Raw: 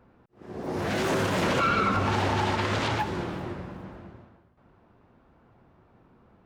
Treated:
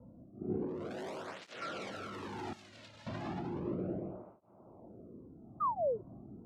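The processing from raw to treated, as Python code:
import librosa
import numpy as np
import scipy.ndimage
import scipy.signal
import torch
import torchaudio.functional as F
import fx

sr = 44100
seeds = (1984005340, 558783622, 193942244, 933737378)

p1 = fx.wiener(x, sr, points=25)
p2 = fx.rev_freeverb(p1, sr, rt60_s=0.93, hf_ratio=1.0, predelay_ms=120, drr_db=2.0)
p3 = 10.0 ** (-29.0 / 20.0) * np.tanh(p2 / 10.0 ** (-29.0 / 20.0))
p4 = p3 + fx.echo_single(p3, sr, ms=201, db=-10.5, dry=0)
p5 = fx.rotary(p4, sr, hz=0.8)
p6 = fx.env_lowpass(p5, sr, base_hz=660.0, full_db=-29.0)
p7 = fx.over_compress(p6, sr, threshold_db=-41.0, ratio=-1.0)
p8 = fx.pre_emphasis(p7, sr, coefficient=0.9, at=(2.53, 3.07))
p9 = fx.spec_paint(p8, sr, seeds[0], shape='fall', start_s=5.6, length_s=0.41, low_hz=370.0, high_hz=1300.0, level_db=-34.0)
p10 = fx.flanger_cancel(p9, sr, hz=0.34, depth_ms=2.7)
y = p10 * 10.0 ** (4.0 / 20.0)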